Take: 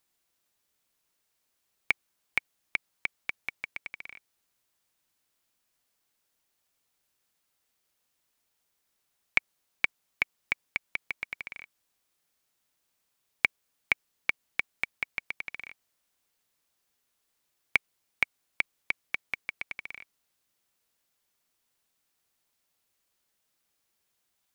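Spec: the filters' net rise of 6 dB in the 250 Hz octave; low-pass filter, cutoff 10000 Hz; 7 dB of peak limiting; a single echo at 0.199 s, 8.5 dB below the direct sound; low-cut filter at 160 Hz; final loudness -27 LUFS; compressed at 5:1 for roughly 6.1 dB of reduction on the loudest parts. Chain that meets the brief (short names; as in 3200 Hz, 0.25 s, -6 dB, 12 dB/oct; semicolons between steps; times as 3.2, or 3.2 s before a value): HPF 160 Hz; LPF 10000 Hz; bell 250 Hz +8.5 dB; compressor 5:1, threshold -28 dBFS; limiter -14 dBFS; echo 0.199 s -8.5 dB; gain +13 dB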